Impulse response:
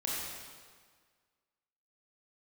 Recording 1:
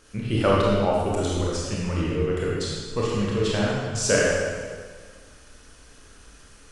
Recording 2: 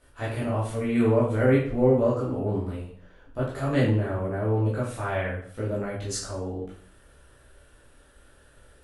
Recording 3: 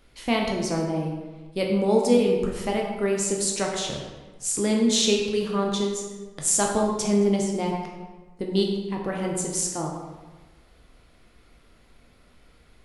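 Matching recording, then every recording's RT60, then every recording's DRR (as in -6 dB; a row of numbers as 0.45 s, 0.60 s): 1; 1.7 s, 0.50 s, 1.3 s; -5.5 dB, -8.5 dB, -0.5 dB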